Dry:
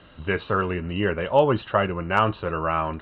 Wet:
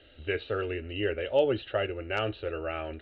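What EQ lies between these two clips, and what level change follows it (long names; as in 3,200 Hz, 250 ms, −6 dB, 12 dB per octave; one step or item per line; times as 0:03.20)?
high-frequency loss of the air 110 metres
high-shelf EQ 2,500 Hz +8.5 dB
phaser with its sweep stopped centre 430 Hz, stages 4
−4.0 dB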